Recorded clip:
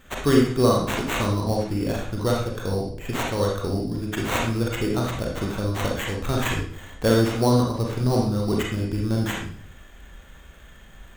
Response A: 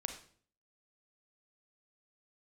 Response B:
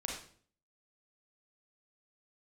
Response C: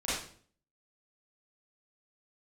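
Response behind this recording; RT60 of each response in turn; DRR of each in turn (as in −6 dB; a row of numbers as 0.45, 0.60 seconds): B; 0.50, 0.50, 0.50 seconds; 5.5, −1.5, −11.5 decibels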